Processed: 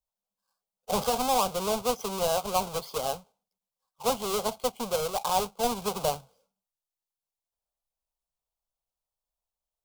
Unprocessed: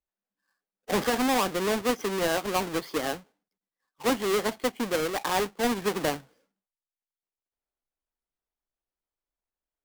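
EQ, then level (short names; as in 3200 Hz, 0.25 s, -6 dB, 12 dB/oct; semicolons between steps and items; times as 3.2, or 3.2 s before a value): fixed phaser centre 750 Hz, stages 4; +2.5 dB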